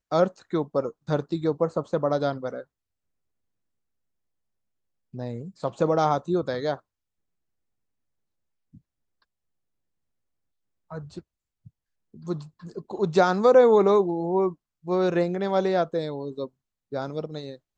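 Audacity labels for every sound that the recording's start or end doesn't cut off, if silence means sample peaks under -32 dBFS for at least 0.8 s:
5.140000	6.750000	sound
10.920000	11.190000	sound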